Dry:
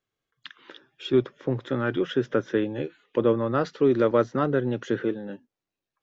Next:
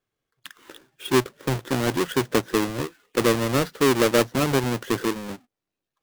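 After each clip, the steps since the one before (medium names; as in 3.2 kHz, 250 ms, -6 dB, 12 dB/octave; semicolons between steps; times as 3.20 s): square wave that keeps the level; trim -2 dB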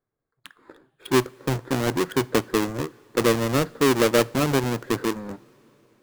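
local Wiener filter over 15 samples; two-slope reverb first 0.34 s, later 4.7 s, from -18 dB, DRR 18.5 dB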